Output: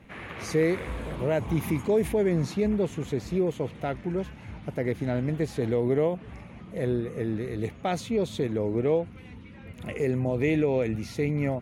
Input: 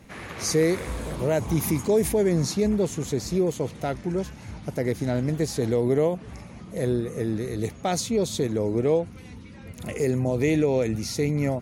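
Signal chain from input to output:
high shelf with overshoot 3,900 Hz −9 dB, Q 1.5
level −2.5 dB

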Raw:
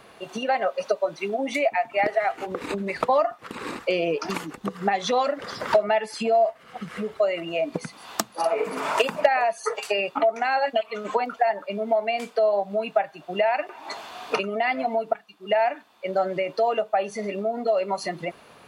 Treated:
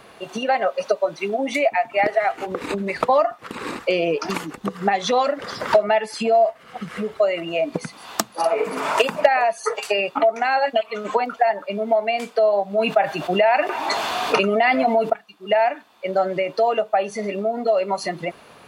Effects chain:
0:12.78–0:15.10: envelope flattener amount 50%
level +3.5 dB

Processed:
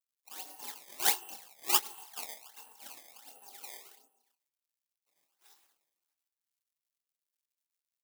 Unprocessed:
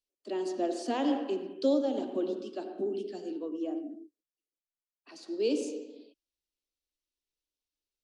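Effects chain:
gain on one half-wave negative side −12 dB
on a send at −12 dB: convolution reverb RT60 1.3 s, pre-delay 29 ms
on the sum: high-pass filter sweep 300 Hz → 2,300 Hz, 0:04.21–0:04.99
in parallel at −10 dB: asymmetric clip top −28 dBFS
on the sum: dynamic equaliser 610 Hz, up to +5 dB, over −42 dBFS, Q 3.7
gate on every frequency bin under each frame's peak −20 dB weak
hollow resonant body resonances 340/790/2,700 Hz, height 16 dB, ringing for 20 ms
sample-and-hold swept by an LFO 18×, swing 160% 1.4 Hz
double-tracking delay 25 ms −8 dB
surface crackle 210 per second −67 dBFS
spectral tilt +5 dB per octave
expander for the loud parts 2.5 to 1, over −27 dBFS
level −3.5 dB

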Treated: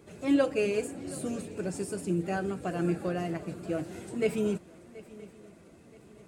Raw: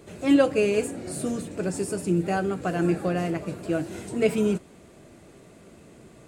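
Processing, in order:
spectral magnitudes quantised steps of 15 dB
feedback echo with a long and a short gap by turns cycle 974 ms, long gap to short 3 to 1, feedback 33%, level −20 dB
level −5.5 dB

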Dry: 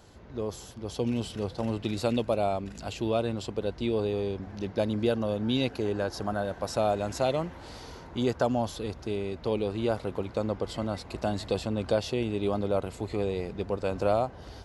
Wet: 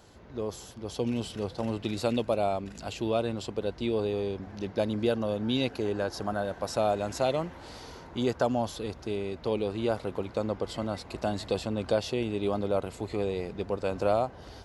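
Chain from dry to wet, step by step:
low-shelf EQ 140 Hz −4 dB

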